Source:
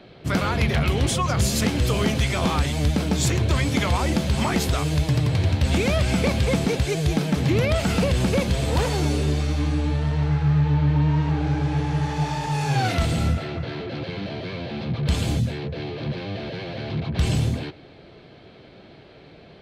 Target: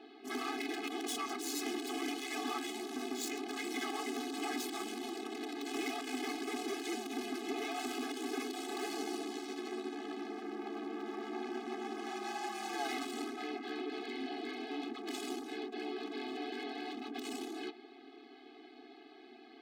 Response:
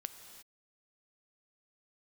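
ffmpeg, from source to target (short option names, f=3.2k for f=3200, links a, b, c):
-af "aeval=exprs='val(0)*sin(2*PI*68*n/s)':c=same,asoftclip=type=hard:threshold=-29dB,afftfilt=real='re*eq(mod(floor(b*sr/1024/220),2),1)':imag='im*eq(mod(floor(b*sr/1024/220),2),1)':win_size=1024:overlap=0.75,volume=-1.5dB"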